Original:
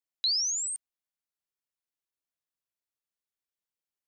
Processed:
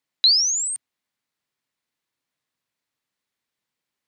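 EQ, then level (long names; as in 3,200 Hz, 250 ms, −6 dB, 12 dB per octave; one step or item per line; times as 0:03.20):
octave-band graphic EQ 125/250/500/1,000/2,000/4,000/8,000 Hz +11/+10/+5/+7/+9/+7/+3 dB
+2.5 dB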